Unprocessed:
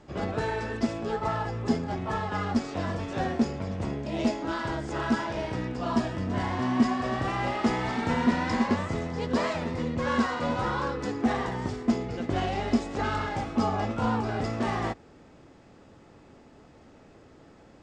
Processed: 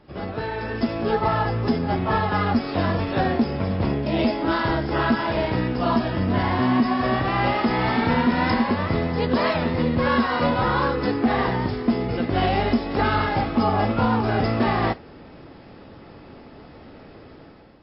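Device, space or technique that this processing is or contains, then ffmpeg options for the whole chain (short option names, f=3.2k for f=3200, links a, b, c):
low-bitrate web radio: -af "dynaudnorm=f=510:g=3:m=10dB,alimiter=limit=-10dB:level=0:latency=1:release=148" -ar 12000 -c:a libmp3lame -b:a 24k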